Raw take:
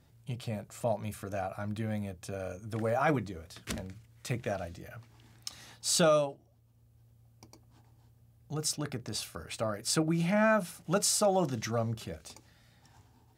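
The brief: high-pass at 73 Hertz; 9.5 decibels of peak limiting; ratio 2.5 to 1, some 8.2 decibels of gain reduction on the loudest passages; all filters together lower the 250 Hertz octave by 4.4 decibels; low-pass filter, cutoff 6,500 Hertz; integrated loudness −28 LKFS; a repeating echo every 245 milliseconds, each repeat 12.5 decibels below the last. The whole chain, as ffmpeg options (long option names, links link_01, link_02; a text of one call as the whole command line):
ffmpeg -i in.wav -af "highpass=73,lowpass=6500,equalizer=frequency=250:width_type=o:gain=-6.5,acompressor=threshold=-35dB:ratio=2.5,alimiter=level_in=5.5dB:limit=-24dB:level=0:latency=1,volume=-5.5dB,aecho=1:1:245|490|735:0.237|0.0569|0.0137,volume=13dB" out.wav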